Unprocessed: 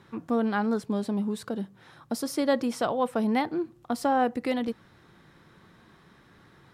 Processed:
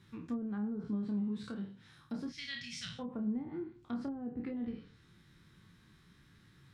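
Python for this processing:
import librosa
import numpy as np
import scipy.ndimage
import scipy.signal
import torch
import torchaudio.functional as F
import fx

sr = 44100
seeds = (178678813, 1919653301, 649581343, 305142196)

y = fx.spec_trails(x, sr, decay_s=0.46)
y = fx.curve_eq(y, sr, hz=(170.0, 320.0, 990.0, 2000.0, 6200.0, 9900.0), db=(0, -30, -23, 4, 2, -8), at=(2.29, 2.99))
y = fx.env_lowpass_down(y, sr, base_hz=380.0, full_db=-20.5)
y = fx.tone_stack(y, sr, knobs='6-0-2')
y = fx.doubler(y, sr, ms=29.0, db=-7.5)
y = F.gain(torch.from_numpy(y), 9.5).numpy()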